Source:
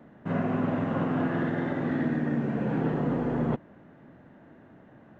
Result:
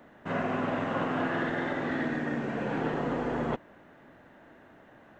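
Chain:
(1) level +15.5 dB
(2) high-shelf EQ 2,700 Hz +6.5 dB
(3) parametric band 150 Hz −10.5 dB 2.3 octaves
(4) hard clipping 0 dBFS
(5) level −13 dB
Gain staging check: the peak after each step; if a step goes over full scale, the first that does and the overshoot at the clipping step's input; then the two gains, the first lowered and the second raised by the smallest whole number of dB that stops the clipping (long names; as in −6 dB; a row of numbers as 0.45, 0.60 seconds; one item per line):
−1.0, −1.0, −5.0, −5.0, −18.0 dBFS
no step passes full scale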